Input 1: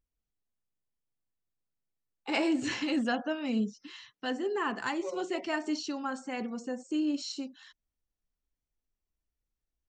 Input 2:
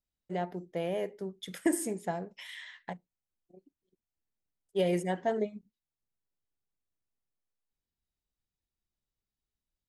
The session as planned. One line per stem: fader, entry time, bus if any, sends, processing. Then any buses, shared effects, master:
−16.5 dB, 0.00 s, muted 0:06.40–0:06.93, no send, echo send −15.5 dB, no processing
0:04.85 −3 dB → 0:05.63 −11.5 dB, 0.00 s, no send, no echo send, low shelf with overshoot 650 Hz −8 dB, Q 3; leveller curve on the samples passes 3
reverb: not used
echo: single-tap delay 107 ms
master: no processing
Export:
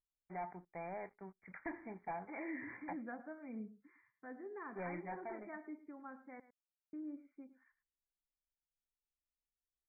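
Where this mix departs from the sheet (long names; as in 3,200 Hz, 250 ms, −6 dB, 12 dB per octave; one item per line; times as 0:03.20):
stem 2 −3.0 dB → −15.0 dB
master: extra linear-phase brick-wall low-pass 2,400 Hz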